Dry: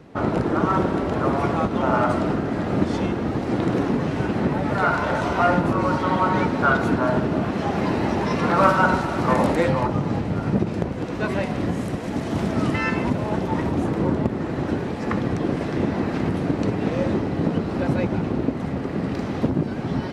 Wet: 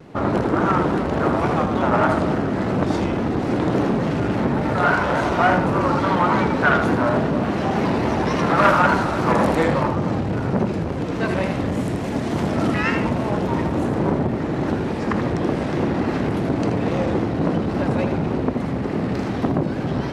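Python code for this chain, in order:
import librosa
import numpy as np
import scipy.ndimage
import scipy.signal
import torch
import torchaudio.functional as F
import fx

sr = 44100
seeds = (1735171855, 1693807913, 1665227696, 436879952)

y = fx.vibrato(x, sr, rate_hz=3.5, depth_cents=95.0)
y = y + 10.0 ** (-6.5 / 20.0) * np.pad(y, (int(80 * sr / 1000.0), 0))[:len(y)]
y = fx.transformer_sat(y, sr, knee_hz=940.0)
y = y * 10.0 ** (3.0 / 20.0)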